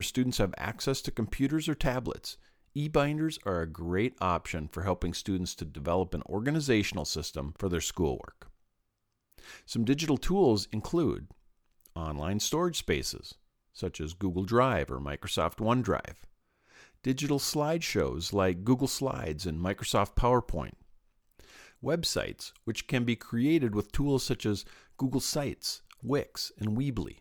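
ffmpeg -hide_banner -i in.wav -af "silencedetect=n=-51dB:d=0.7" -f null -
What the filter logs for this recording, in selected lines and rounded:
silence_start: 8.50
silence_end: 9.32 | silence_duration: 0.82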